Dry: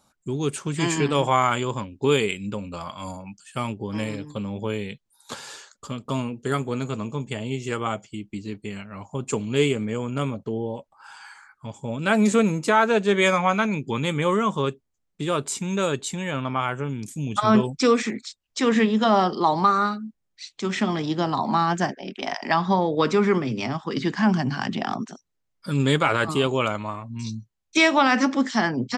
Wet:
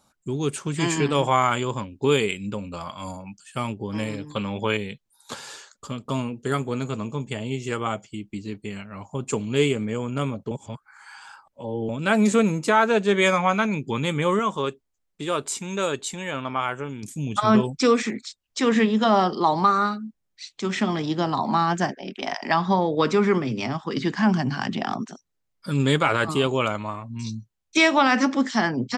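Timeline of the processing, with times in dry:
0:04.31–0:04.77: parametric band 2,000 Hz +11.5 dB 2.8 octaves
0:10.51–0:11.89: reverse
0:14.39–0:17.03: parametric band 140 Hz −7 dB 1.7 octaves

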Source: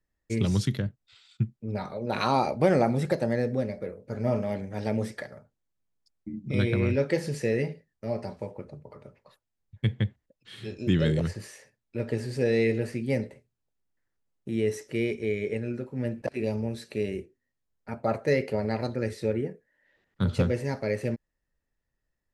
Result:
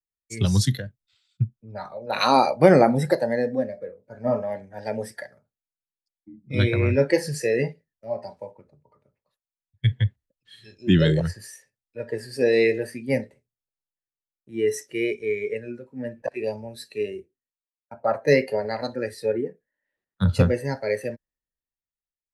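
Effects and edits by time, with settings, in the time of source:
0:17.02–0:17.91: fade out and dull
whole clip: noise reduction from a noise print of the clip's start 11 dB; high-shelf EQ 5,100 Hz +5 dB; multiband upward and downward expander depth 40%; level +4.5 dB

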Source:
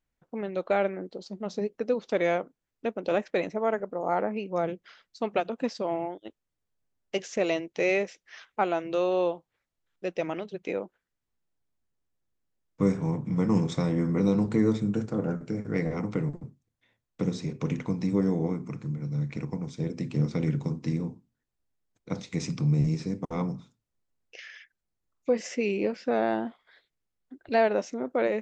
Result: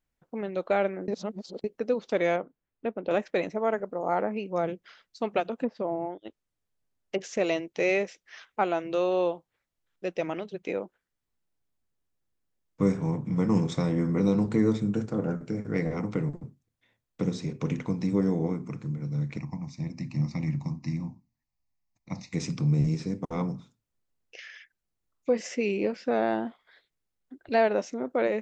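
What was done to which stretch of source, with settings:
0:01.08–0:01.64: reverse
0:02.36–0:03.11: high-frequency loss of the air 310 metres
0:05.58–0:07.21: treble cut that deepens with the level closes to 810 Hz, closed at −24.5 dBFS
0:19.38–0:22.33: phaser with its sweep stopped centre 2,200 Hz, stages 8

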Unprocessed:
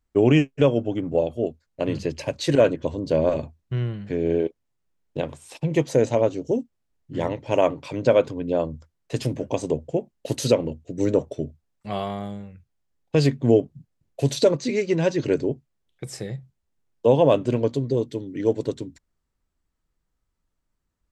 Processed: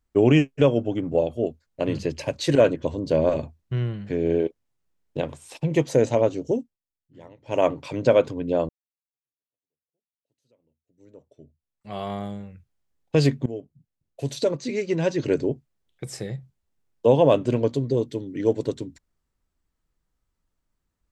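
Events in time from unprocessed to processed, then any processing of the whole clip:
0:06.51–0:07.66: duck −20.5 dB, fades 0.27 s
0:08.69–0:12.13: fade in exponential
0:13.46–0:15.47: fade in, from −19.5 dB

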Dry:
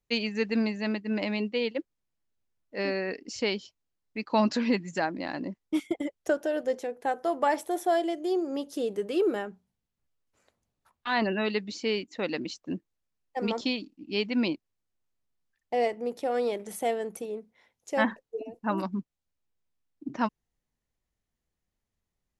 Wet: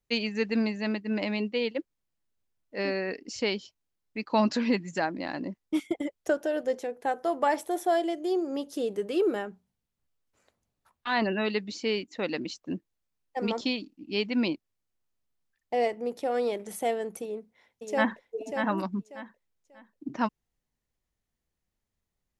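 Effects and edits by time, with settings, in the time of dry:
0:17.22–0:18.24: delay throw 590 ms, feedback 25%, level −5 dB

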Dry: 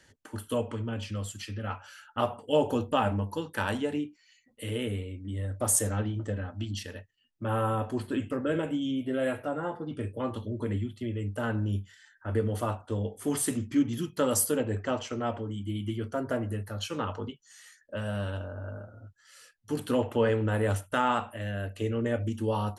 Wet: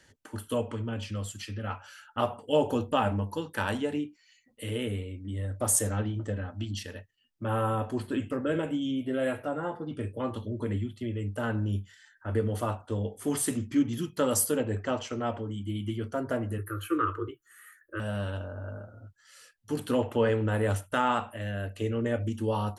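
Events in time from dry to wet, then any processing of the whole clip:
0:16.58–0:18.00: drawn EQ curve 120 Hz 0 dB, 220 Hz −30 dB, 320 Hz +14 dB, 500 Hz −3 dB, 760 Hz −27 dB, 1,200 Hz +10 dB, 2,100 Hz 0 dB, 5,500 Hz −21 dB, 11,000 Hz +9 dB

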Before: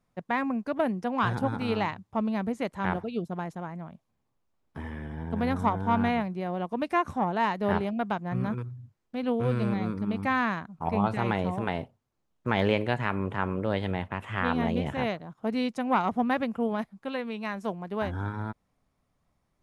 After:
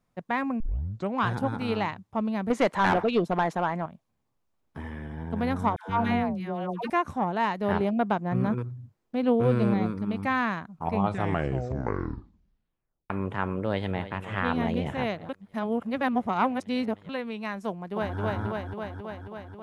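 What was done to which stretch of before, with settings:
0:00.60: tape start 0.57 s
0:02.50–0:03.86: mid-hump overdrive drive 23 dB, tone 2,600 Hz, clips at −11 dBFS
0:05.76–0:06.90: all-pass dispersion lows, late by 132 ms, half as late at 750 Hz
0:07.79–0:09.87: parametric band 390 Hz +5.5 dB 2.9 octaves
0:10.96: tape stop 2.14 s
0:13.63–0:14.12: delay throw 310 ms, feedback 75%, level −13 dB
0:15.29–0:17.09: reverse
0:17.69–0:18.19: delay throw 270 ms, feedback 75%, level −0.5 dB

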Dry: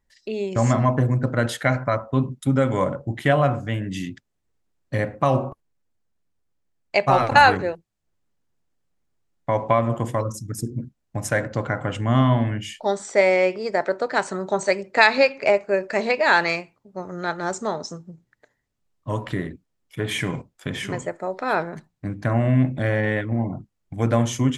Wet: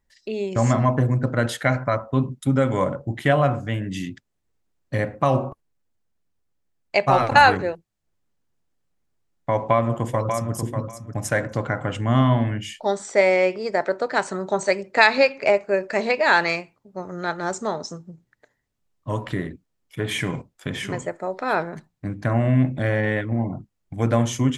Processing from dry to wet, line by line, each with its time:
0:09.54–0:10.54: delay throw 590 ms, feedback 15%, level −6.5 dB

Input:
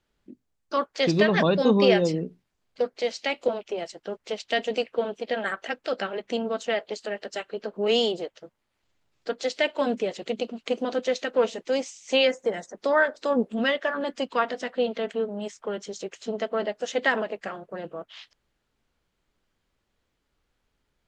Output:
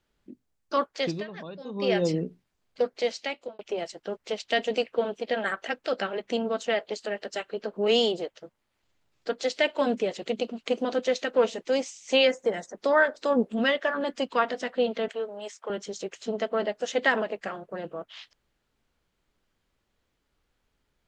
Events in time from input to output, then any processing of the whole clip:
0:00.84–0:02.13: duck −19 dB, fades 0.41 s
0:03.07–0:03.59: fade out
0:15.08–0:15.70: high-pass filter 500 Hz

